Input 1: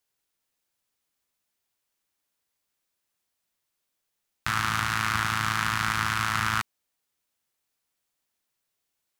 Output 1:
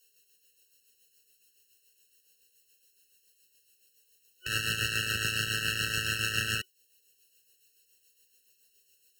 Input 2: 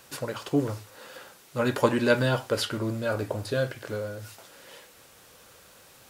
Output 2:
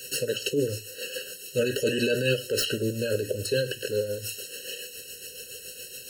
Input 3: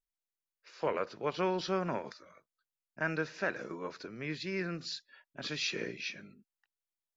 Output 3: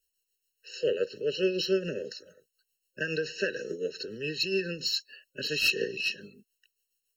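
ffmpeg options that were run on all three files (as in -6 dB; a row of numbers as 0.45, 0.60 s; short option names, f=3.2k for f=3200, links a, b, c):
-filter_complex "[0:a]superequalizer=7b=2.82:10b=0.251:12b=2.51,asplit=2[a][b];[b]acompressor=threshold=-37dB:ratio=5,volume=-2dB[c];[a][c]amix=inputs=2:normalize=0,alimiter=limit=-14dB:level=0:latency=1:release=34,acrossover=split=310|3200[d][e][f];[f]aeval=exprs='0.133*sin(PI/2*3.55*val(0)/0.133)':c=same[g];[d][e][g]amix=inputs=3:normalize=0,tremolo=f=7.1:d=0.49,afftfilt=real='re*eq(mod(floor(b*sr/1024/640),2),0)':imag='im*eq(mod(floor(b*sr/1024/640),2),0)':win_size=1024:overlap=0.75"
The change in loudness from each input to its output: -3.0, -1.0, +6.0 LU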